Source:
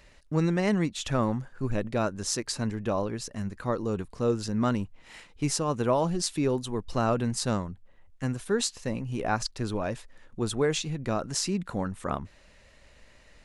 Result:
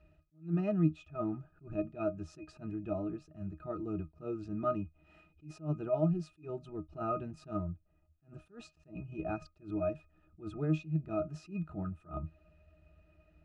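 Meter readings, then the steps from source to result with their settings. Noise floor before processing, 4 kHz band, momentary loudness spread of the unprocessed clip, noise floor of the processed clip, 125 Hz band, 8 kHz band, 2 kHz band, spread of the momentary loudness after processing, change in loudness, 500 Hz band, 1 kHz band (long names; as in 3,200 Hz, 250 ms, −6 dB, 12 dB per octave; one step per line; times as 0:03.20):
−57 dBFS, −27.0 dB, 8 LU, −71 dBFS, −6.5 dB, below −30 dB, −16.5 dB, 16 LU, −8.0 dB, −8.5 dB, −11.0 dB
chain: resonances in every octave D#, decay 0.13 s
level that may rise only so fast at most 210 dB per second
level +4.5 dB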